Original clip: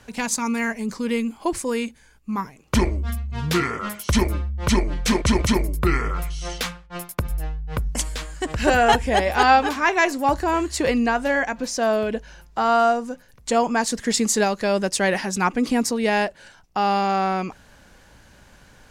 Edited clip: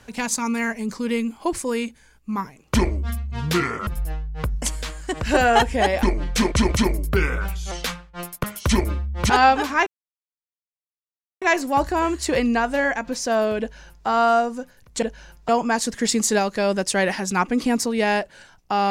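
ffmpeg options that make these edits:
-filter_complex "[0:a]asplit=10[a][b][c][d][e][f][g][h][i][j];[a]atrim=end=3.872[k];[b]atrim=start=7.198:end=9.362[l];[c]atrim=start=4.728:end=5.834[m];[d]atrim=start=5.83:end=6.48,asetpts=PTS-STARTPTS,asetrate=48951,aresample=44100,atrim=end_sample=25824,asetpts=PTS-STARTPTS[n];[e]atrim=start=6.476:end=7.202[o];[f]atrim=start=3.868:end=4.732[p];[g]atrim=start=9.358:end=9.93,asetpts=PTS-STARTPTS,afade=t=out:st=0.568:d=0.004:c=hsin,apad=pad_dur=1.55[q];[h]atrim=start=9.93:end=13.542,asetpts=PTS-STARTPTS,afade=t=in:d=0.004:c=hsin[r];[i]atrim=start=12.118:end=12.582[s];[j]atrim=start=13.538[t];[k][l]acrossfade=d=0.004:c1=hsin:c2=hsin[u];[u][m]acrossfade=d=0.004:c1=hsin:c2=hsin[v];[v][n]acrossfade=d=0.004:c1=hsin:c2=hsin[w];[w][o]acrossfade=d=0.004:c1=hsin:c2=hsin[x];[x][p]acrossfade=d=0.004:c1=hsin:c2=hsin[y];[q][r]concat=n=2:v=0:a=1[z];[y][z]acrossfade=d=0.004:c1=hsin:c2=hsin[aa];[aa][s]acrossfade=d=0.004:c1=hsin:c2=hsin[ab];[ab][t]acrossfade=d=0.004:c1=hsin:c2=hsin"

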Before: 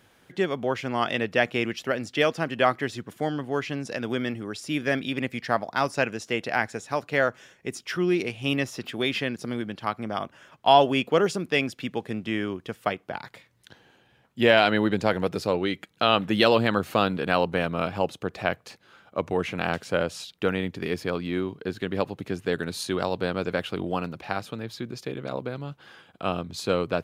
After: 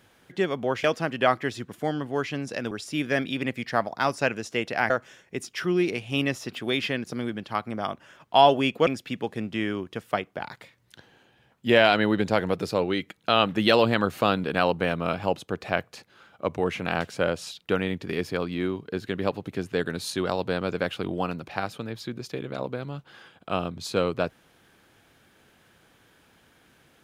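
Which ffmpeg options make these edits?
-filter_complex "[0:a]asplit=5[a][b][c][d][e];[a]atrim=end=0.842[f];[b]atrim=start=2.218:end=4.092[g];[c]atrim=start=4.468:end=6.662[h];[d]atrim=start=7.218:end=11.192[i];[e]atrim=start=11.598[j];[f][g]acrossfade=d=0.004:c1=hsin:c2=hsin[k];[k][h]acrossfade=d=0.004:c1=hsin:c2=hsin[l];[l][i]acrossfade=d=0.004:c1=hsin:c2=hsin[m];[m][j]acrossfade=d=0.004:c1=hsin:c2=hsin"

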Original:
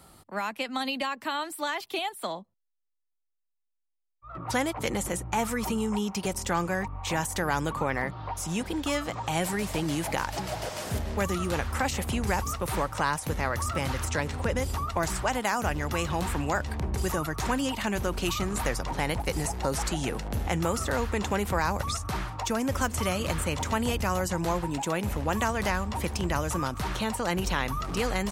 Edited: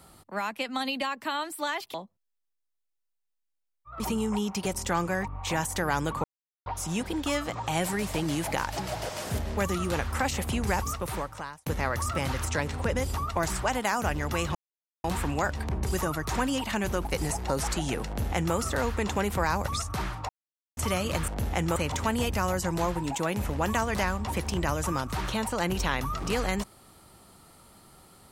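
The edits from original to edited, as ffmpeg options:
-filter_complex "[0:a]asplit=12[a][b][c][d][e][f][g][h][i][j][k][l];[a]atrim=end=1.942[m];[b]atrim=start=2.308:end=4.372[n];[c]atrim=start=5.598:end=7.84,asetpts=PTS-STARTPTS,afade=t=out:st=2.238:d=0.004:c=hsin[o];[d]atrim=start=7.84:end=8.26,asetpts=PTS-STARTPTS,volume=0[p];[e]atrim=start=8.26:end=13.26,asetpts=PTS-STARTPTS,afade=t=in:d=0.004:c=hsin,afade=t=out:st=4.22:d=0.78[q];[f]atrim=start=13.26:end=16.15,asetpts=PTS-STARTPTS,afade=t=in:d=0.004:c=hsin,afade=t=out:st=2.886:d=0.004:c=hsin,apad=pad_dur=0.49[r];[g]atrim=start=16.15:end=18.162,asetpts=PTS-STARTPTS,afade=t=in:d=0.004:c=hsin[s];[h]atrim=start=19.198:end=22.44,asetpts=PTS-STARTPTS,afade=t=out:st=3.238:d=0.004:c=hsin[t];[i]atrim=start=22.44:end=22.92,asetpts=PTS-STARTPTS,volume=0[u];[j]atrim=start=22.92:end=23.432,asetpts=PTS-STARTPTS,afade=t=in:d=0.004:c=hsin[v];[k]atrim=start=20.218:end=20.702[w];[l]atrim=start=23.428[x];[m][n]acrossfade=d=0.004:c1=hsin:c2=hsin[y];[o][p][q][r][s]concat=n=5:v=0:a=1[z];[y][z]acrossfade=d=0.004:c1=hsin:c2=hsin[aa];[t][u][v]concat=n=3:v=0:a=1[ab];[aa][ab]acrossfade=d=0.004:c1=hsin:c2=hsin[ac];[ac][w]acrossfade=d=0.004:c1=hsin:c2=hsin[ad];[ad][x]acrossfade=d=0.004:c1=hsin:c2=hsin"

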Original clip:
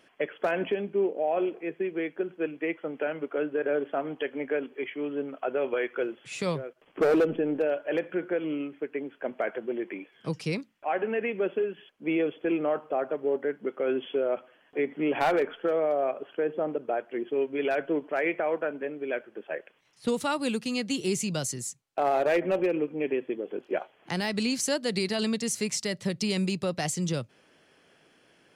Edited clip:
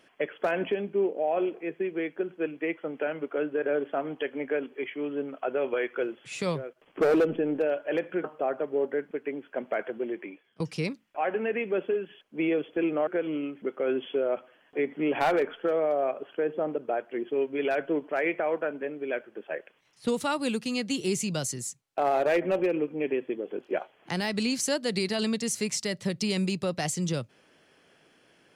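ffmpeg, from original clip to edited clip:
-filter_complex "[0:a]asplit=6[a][b][c][d][e][f];[a]atrim=end=8.242[g];[b]atrim=start=12.748:end=13.622[h];[c]atrim=start=8.788:end=10.28,asetpts=PTS-STARTPTS,afade=t=out:st=0.792:d=0.7:c=qsin:silence=0.0891251[i];[d]atrim=start=10.28:end=12.752,asetpts=PTS-STARTPTS,afade=t=in:d=0.004:c=hsin:silence=0.0891251[j];[e]atrim=start=8.238:end=8.792[k];[f]atrim=start=13.618[l];[g][h]acrossfade=d=0.004:c1=hsin:c2=hsin[m];[i][j]concat=n=2:v=0:a=1[n];[m][n]acrossfade=d=0.004:c1=hsin:c2=hsin[o];[o][k]acrossfade=d=0.004:c1=hsin:c2=hsin[p];[p][l]acrossfade=d=0.004:c1=hsin:c2=hsin"

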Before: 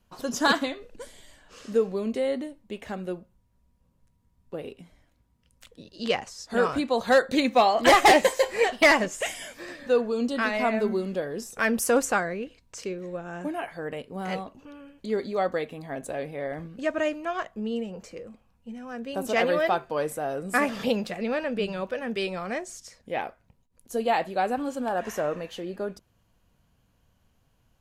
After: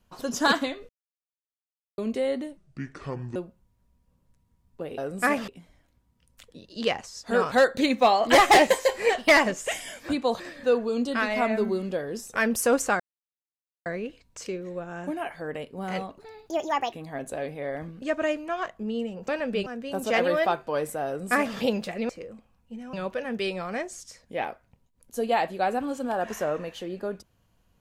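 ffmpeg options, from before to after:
-filter_complex "[0:a]asplit=17[a][b][c][d][e][f][g][h][i][j][k][l][m][n][o][p][q];[a]atrim=end=0.89,asetpts=PTS-STARTPTS,afade=t=out:st=0.886:d=0.004:c=hsin[r];[b]atrim=start=0.89:end=1.98,asetpts=PTS-STARTPTS,volume=0[s];[c]atrim=start=1.98:end=2.574,asetpts=PTS-STARTPTS,afade=t=in:d=0.004:c=hsin[t];[d]atrim=start=2.57:end=3.09,asetpts=PTS-STARTPTS,asetrate=29106,aresample=44100,atrim=end_sample=34745,asetpts=PTS-STARTPTS[u];[e]atrim=start=3.086:end=4.712[v];[f]atrim=start=20.288:end=20.792[w];[g]atrim=start=4.708:end=6.752[x];[h]atrim=start=7.058:end=9.632[y];[i]atrim=start=6.748:end=7.062[z];[j]atrim=start=9.628:end=12.23,asetpts=PTS-STARTPTS,afade=t=out:st=2.598:d=0.004:c=hsin,apad=pad_dur=0.86[aa];[k]atrim=start=12.23:end=14.554,asetpts=PTS-STARTPTS,afade=t=in:d=0.004:c=hsin[ab];[l]atrim=start=14.55:end=15.69,asetpts=PTS-STARTPTS,asetrate=67473,aresample=44100[ac];[m]atrim=start=15.686:end=18.052[ad];[n]atrim=start=21.318:end=21.702[ae];[o]atrim=start=18.888:end=21.322[af];[p]atrim=start=18.048:end=18.892[ag];[q]atrim=start=21.698[ah];[r][s][t]concat=n=3:v=0:a=1[ai];[ai][u]acrossfade=d=0.004:c1=hsin:c2=hsin[aj];[aj][v]acrossfade=d=0.004:c1=hsin:c2=hsin[ak];[ak][w]acrossfade=d=0.004:c1=hsin:c2=hsin[al];[al][x]acrossfade=d=0.004:c1=hsin:c2=hsin[am];[am][y]acrossfade=d=0.004:c1=hsin:c2=hsin[an];[an][z]acrossfade=d=0.004:c1=hsin:c2=hsin[ao];[aa][ab]concat=n=2:v=0:a=1[ap];[ao][ap]acrossfade=d=0.004:c1=hsin:c2=hsin[aq];[aq][ac]acrossfade=d=0.004:c1=hsin:c2=hsin[ar];[ar][ad]acrossfade=d=0.004:c1=hsin:c2=hsin[as];[as][ae]acrossfade=d=0.004:c1=hsin:c2=hsin[at];[at][af]acrossfade=d=0.004:c1=hsin:c2=hsin[au];[au][ag]acrossfade=d=0.004:c1=hsin:c2=hsin[av];[av][ah]acrossfade=d=0.004:c1=hsin:c2=hsin"

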